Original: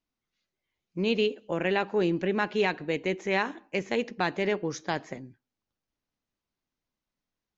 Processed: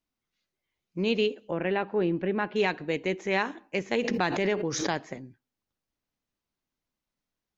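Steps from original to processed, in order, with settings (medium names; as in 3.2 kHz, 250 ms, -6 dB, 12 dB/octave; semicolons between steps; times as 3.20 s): 1.51–2.56 s: distance through air 330 m; 3.92–5.06 s: swell ahead of each attack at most 33 dB/s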